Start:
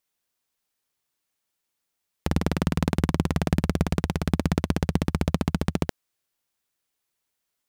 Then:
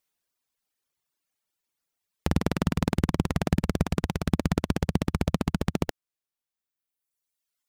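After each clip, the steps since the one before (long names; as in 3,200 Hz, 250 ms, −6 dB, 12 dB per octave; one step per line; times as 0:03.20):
reverb reduction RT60 1.8 s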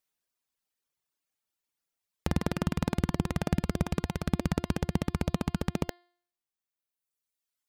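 hum removal 351.1 Hz, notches 14
level −3.5 dB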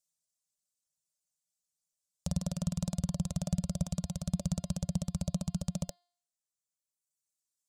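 drawn EQ curve 120 Hz 0 dB, 180 Hz +7 dB, 370 Hz −28 dB, 570 Hz +3 dB, 820 Hz −8 dB, 1,300 Hz −10 dB, 1,900 Hz −17 dB, 3,500 Hz −1 dB, 7,400 Hz +13 dB, 15,000 Hz −2 dB
level −6 dB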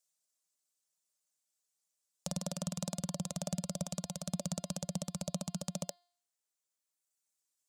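high-pass filter 270 Hz 12 dB per octave
level +2.5 dB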